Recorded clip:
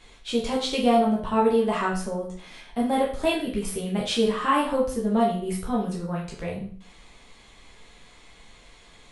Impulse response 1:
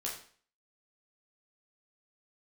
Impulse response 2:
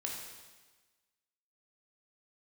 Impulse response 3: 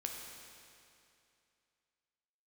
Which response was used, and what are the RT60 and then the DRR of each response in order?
1; 0.45, 1.3, 2.6 seconds; −4.0, −1.5, 1.0 decibels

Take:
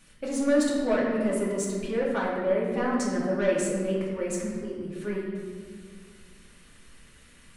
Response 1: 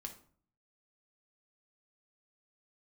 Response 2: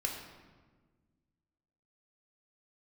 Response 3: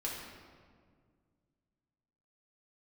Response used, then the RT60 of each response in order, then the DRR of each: 3; 0.50, 1.4, 1.9 seconds; 3.5, 0.0, −5.0 decibels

